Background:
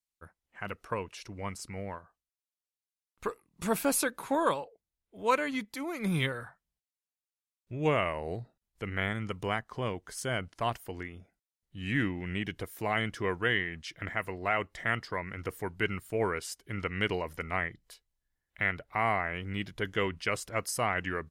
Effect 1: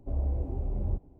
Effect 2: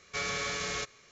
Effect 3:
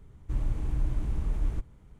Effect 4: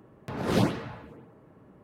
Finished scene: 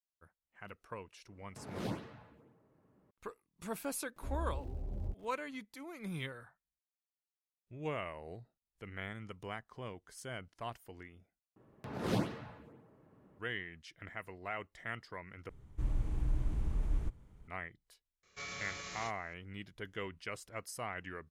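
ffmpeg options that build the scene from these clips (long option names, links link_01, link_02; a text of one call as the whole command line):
ffmpeg -i bed.wav -i cue0.wav -i cue1.wav -i cue2.wav -i cue3.wav -filter_complex "[4:a]asplit=2[link_01][link_02];[0:a]volume=-11.5dB[link_03];[1:a]aeval=exprs='val(0)*gte(abs(val(0)),0.00316)':channel_layout=same[link_04];[2:a]asplit=2[link_05][link_06];[link_06]adelay=29,volume=-5.5dB[link_07];[link_05][link_07]amix=inputs=2:normalize=0[link_08];[link_03]asplit=3[link_09][link_10][link_11];[link_09]atrim=end=11.564[link_12];[link_02]atrim=end=1.83,asetpts=PTS-STARTPTS,volume=-9dB[link_13];[link_10]atrim=start=13.386:end=15.494[link_14];[3:a]atrim=end=1.99,asetpts=PTS-STARTPTS,volume=-5dB[link_15];[link_11]atrim=start=17.476[link_16];[link_01]atrim=end=1.83,asetpts=PTS-STARTPTS,volume=-15dB,afade=type=in:duration=0.004:curve=hsin,afade=type=out:start_time=1.826:duration=0.004:curve=hsin,adelay=1280[link_17];[link_04]atrim=end=1.19,asetpts=PTS-STARTPTS,volume=-9.5dB,afade=type=in:duration=0.004:curve=hsin,afade=type=out:start_time=1.186:duration=0.004:curve=hsin,adelay=4160[link_18];[link_08]atrim=end=1.11,asetpts=PTS-STARTPTS,volume=-12dB,afade=type=in:duration=0.004:curve=hsin,afade=type=out:start_time=1.106:duration=0.004:curve=hsin,adelay=18230[link_19];[link_12][link_13]acrossfade=duration=0.004:curve1=hsin:curve2=hsin[link_20];[link_20][link_14]acrossfade=duration=0.004:curve1=hsin:curve2=hsin[link_21];[link_21][link_15]acrossfade=duration=0.004:curve1=hsin:curve2=hsin[link_22];[link_22][link_16]acrossfade=duration=0.004:curve1=hsin:curve2=hsin[link_23];[link_23][link_17][link_18][link_19]amix=inputs=4:normalize=0" out.wav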